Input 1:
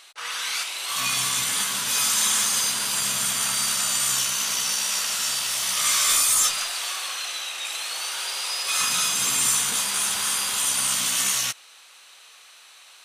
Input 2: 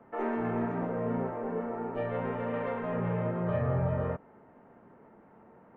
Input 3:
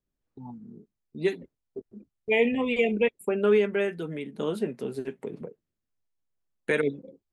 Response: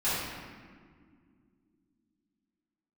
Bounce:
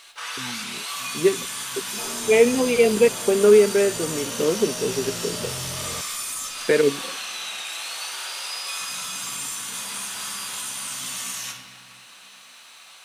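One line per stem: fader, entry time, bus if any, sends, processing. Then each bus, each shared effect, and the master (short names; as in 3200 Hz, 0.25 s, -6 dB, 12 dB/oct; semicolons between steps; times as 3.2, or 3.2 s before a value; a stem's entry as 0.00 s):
-1.5 dB, 0.00 s, send -9.5 dB, compressor 6:1, threshold -31 dBFS, peak gain reduction 13.5 dB; requantised 12-bit, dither triangular
-1.0 dB, 1.85 s, no send, hard clip -33 dBFS, distortion -8 dB
+2.0 dB, 0.00 s, no send, bell 440 Hz +6.5 dB 1.1 oct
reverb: on, RT60 2.0 s, pre-delay 3 ms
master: dry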